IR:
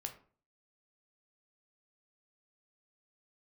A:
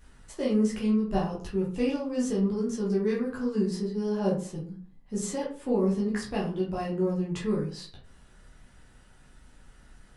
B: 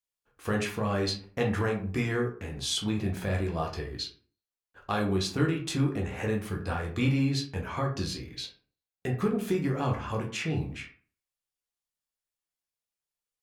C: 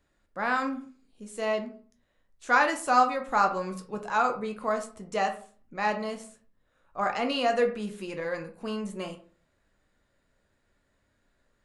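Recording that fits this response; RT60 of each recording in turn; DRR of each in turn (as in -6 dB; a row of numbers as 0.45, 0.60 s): C; 0.45, 0.45, 0.45 s; -5.5, 0.0, 4.5 dB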